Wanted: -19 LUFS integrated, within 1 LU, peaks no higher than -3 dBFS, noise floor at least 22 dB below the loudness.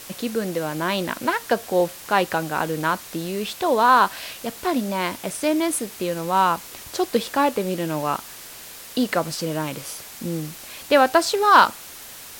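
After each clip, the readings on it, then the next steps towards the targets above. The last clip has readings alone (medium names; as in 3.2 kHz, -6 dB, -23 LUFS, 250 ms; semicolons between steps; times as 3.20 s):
noise floor -40 dBFS; noise floor target -44 dBFS; loudness -22.0 LUFS; peak level -3.0 dBFS; loudness target -19.0 LUFS
-> noise reduction 6 dB, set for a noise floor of -40 dBFS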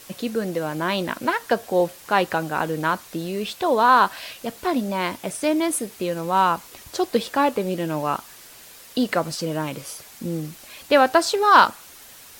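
noise floor -45 dBFS; loudness -22.0 LUFS; peak level -3.0 dBFS; loudness target -19.0 LUFS
-> trim +3 dB; peak limiter -3 dBFS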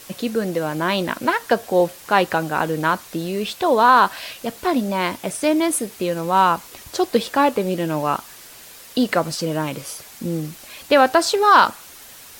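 loudness -19.5 LUFS; peak level -3.0 dBFS; noise floor -42 dBFS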